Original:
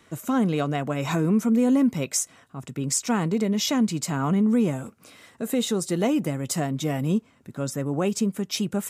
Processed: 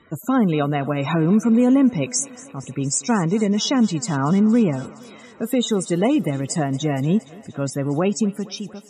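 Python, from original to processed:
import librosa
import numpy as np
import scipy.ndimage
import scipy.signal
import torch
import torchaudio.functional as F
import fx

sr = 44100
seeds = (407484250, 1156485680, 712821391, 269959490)

y = fx.fade_out_tail(x, sr, length_s=0.73)
y = fx.spec_topn(y, sr, count=64)
y = fx.echo_thinned(y, sr, ms=233, feedback_pct=78, hz=260.0, wet_db=-20)
y = y * librosa.db_to_amplitude(4.5)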